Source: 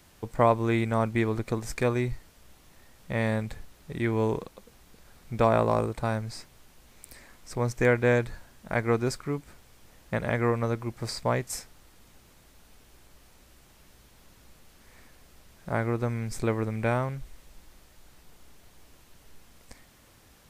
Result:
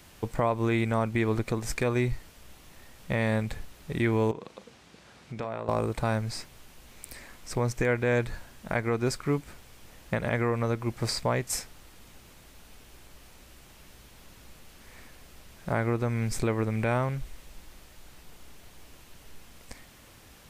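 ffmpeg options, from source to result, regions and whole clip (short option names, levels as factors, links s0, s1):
-filter_complex "[0:a]asettb=1/sr,asplit=3[s0][s1][s2];[s0]atrim=end=4.314[s3];[s1]atrim=start=4.31:end=5.69,asetpts=PTS-STARTPTS,afade=t=in:d=0.004:c=qsin,afade=t=out:st=1.376:d=0.004:c=qsin,highpass=110,lowpass=6700,acompressor=threshold=0.01:ratio=3:attack=3.2:release=140:knee=1:detection=peak,asplit=2[s4][s5];[s5]adelay=37,volume=0.224[s6];[s4][s6]amix=inputs=2:normalize=0,atrim=end_sample=60858[s7];[s2]atrim=start=5.686[s8];[s3][s7]acrossfade=d=0.004:c1=hsin:c2=qsin[s9];[s9][s8]acrossfade=d=0.004:c1=qsin:c2=hsin,equalizer=f=2700:t=o:w=0.77:g=2.5,alimiter=limit=0.106:level=0:latency=1:release=198,volume=1.58"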